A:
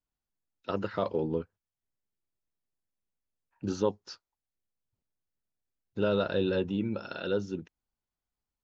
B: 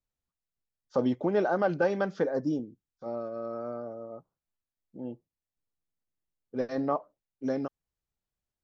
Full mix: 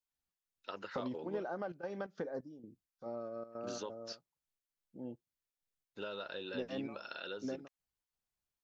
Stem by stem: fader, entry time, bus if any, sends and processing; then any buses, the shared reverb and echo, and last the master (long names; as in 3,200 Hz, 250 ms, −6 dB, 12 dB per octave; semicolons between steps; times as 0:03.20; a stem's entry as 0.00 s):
−1.5 dB, 0.00 s, no send, high-pass filter 1,300 Hz 6 dB per octave; downward compressor, threshold −38 dBFS, peak gain reduction 8 dB
−6.5 dB, 0.00 s, no send, downward compressor 6 to 1, threshold −30 dBFS, peak gain reduction 9.5 dB; gate pattern ".xx.xx..xx.xxxx" 131 BPM −12 dB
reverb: not used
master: no processing